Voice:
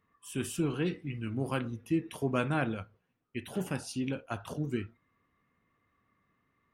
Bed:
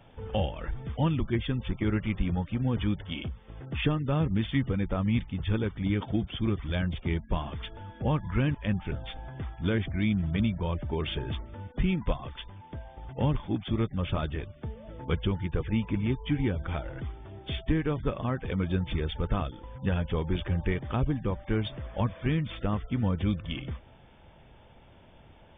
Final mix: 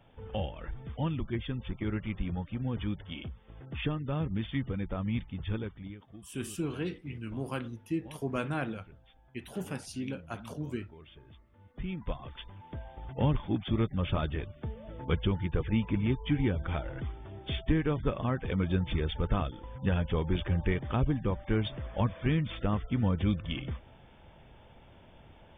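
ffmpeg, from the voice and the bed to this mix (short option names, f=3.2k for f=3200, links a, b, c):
-filter_complex "[0:a]adelay=6000,volume=-3dB[a];[1:a]volume=15.5dB,afade=t=out:st=5.52:d=0.46:silence=0.158489,afade=t=in:st=11.53:d=1.31:silence=0.0891251[b];[a][b]amix=inputs=2:normalize=0"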